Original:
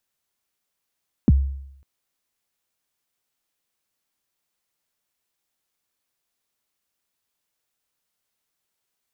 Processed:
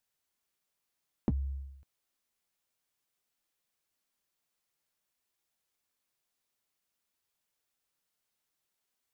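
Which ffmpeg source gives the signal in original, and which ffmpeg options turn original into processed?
-f lavfi -i "aevalsrc='0.376*pow(10,-3*t/0.76)*sin(2*PI*(310*0.031/log(68/310)*(exp(log(68/310)*min(t,0.031)/0.031)-1)+68*max(t-0.031,0)))':d=0.55:s=44100"
-filter_complex "[0:a]acrossover=split=580[a][b];[a]acompressor=threshold=-25dB:ratio=6[c];[c][b]amix=inputs=2:normalize=0,flanger=delay=1.1:depth=7.4:regen=-60:speed=0.54:shape=triangular"

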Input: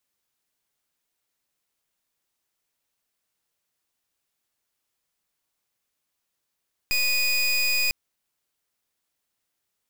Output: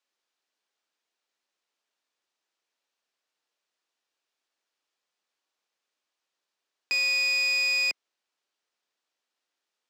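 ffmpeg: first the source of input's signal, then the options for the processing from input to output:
-f lavfi -i "aevalsrc='0.075*(2*lt(mod(2480*t,1),0.26)-1)':d=1:s=44100"
-filter_complex "[0:a]highpass=140,acrossover=split=260 6800:gain=0.0891 1 0.0708[a][b][c];[a][b][c]amix=inputs=3:normalize=0,bandreject=f=2.1k:w=27"

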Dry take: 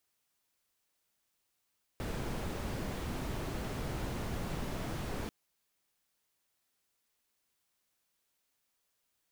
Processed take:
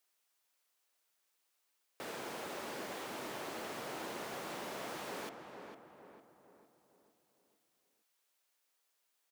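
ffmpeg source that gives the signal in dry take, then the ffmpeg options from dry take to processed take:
-f lavfi -i "anoisesrc=c=brown:a=0.0661:d=3.29:r=44100:seed=1"
-filter_complex "[0:a]highpass=410,asplit=2[a][b];[b]adelay=455,lowpass=f=1.8k:p=1,volume=-6dB,asplit=2[c][d];[d]adelay=455,lowpass=f=1.8k:p=1,volume=0.49,asplit=2[e][f];[f]adelay=455,lowpass=f=1.8k:p=1,volume=0.49,asplit=2[g][h];[h]adelay=455,lowpass=f=1.8k:p=1,volume=0.49,asplit=2[i][j];[j]adelay=455,lowpass=f=1.8k:p=1,volume=0.49,asplit=2[k][l];[l]adelay=455,lowpass=f=1.8k:p=1,volume=0.49[m];[c][e][g][i][k][m]amix=inputs=6:normalize=0[n];[a][n]amix=inputs=2:normalize=0"

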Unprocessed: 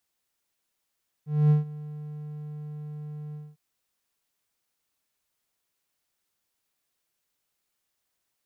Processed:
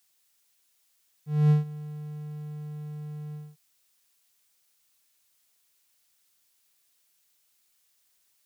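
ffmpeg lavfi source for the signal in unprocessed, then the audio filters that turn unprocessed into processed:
-f lavfi -i "aevalsrc='0.224*(1-4*abs(mod(150*t+0.25,1)-0.5))':d=2.303:s=44100,afade=t=in:d=0.243,afade=t=out:st=0.243:d=0.139:silence=0.1,afade=t=out:st=2.08:d=0.223"
-af "highshelf=f=2k:g=11.5"

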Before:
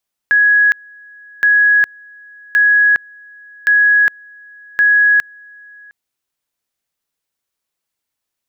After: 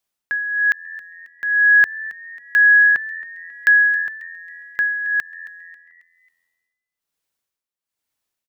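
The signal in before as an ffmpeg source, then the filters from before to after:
-f lavfi -i "aevalsrc='pow(10,(-7.5-29*gte(mod(t,1.12),0.41))/20)*sin(2*PI*1670*t)':d=5.6:s=44100"
-filter_complex "[0:a]tremolo=f=1.1:d=0.81,asplit=5[a][b][c][d][e];[b]adelay=271,afreqshift=85,volume=-18dB[f];[c]adelay=542,afreqshift=170,volume=-25.3dB[g];[d]adelay=813,afreqshift=255,volume=-32.7dB[h];[e]adelay=1084,afreqshift=340,volume=-40dB[i];[a][f][g][h][i]amix=inputs=5:normalize=0"

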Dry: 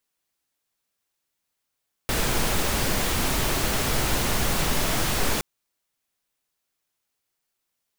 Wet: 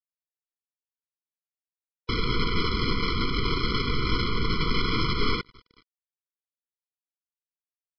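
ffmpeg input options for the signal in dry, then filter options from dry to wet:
-f lavfi -i "anoisesrc=c=pink:a=0.343:d=3.32:r=44100:seed=1"
-af "aecho=1:1:417:0.0668,aresample=11025,acrusher=bits=5:dc=4:mix=0:aa=0.000001,aresample=44100,afftfilt=real='re*eq(mod(floor(b*sr/1024/490),2),0)':imag='im*eq(mod(floor(b*sr/1024/490),2),0)':win_size=1024:overlap=0.75"

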